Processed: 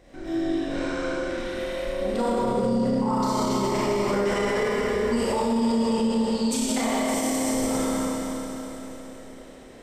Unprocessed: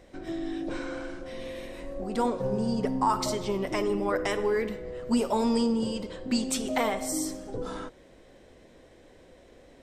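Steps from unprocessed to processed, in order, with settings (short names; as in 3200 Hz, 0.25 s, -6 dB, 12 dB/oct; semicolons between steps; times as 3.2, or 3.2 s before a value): 5.97–6.51 ladder band-pass 4200 Hz, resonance 65%; Schroeder reverb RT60 3.9 s, combs from 27 ms, DRR -9.5 dB; limiter -14.5 dBFS, peak gain reduction 11 dB; gain -1.5 dB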